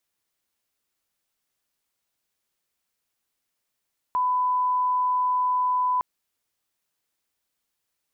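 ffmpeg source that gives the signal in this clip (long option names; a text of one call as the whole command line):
ffmpeg -f lavfi -i "sine=frequency=1000:duration=1.86:sample_rate=44100,volume=-1.94dB" out.wav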